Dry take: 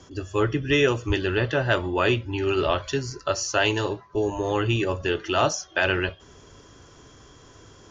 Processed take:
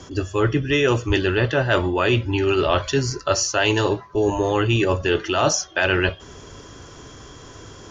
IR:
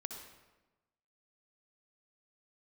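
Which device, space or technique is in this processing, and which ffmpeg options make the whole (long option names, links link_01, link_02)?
compression on the reversed sound: -af "areverse,acompressor=threshold=-24dB:ratio=5,areverse,volume=8.5dB"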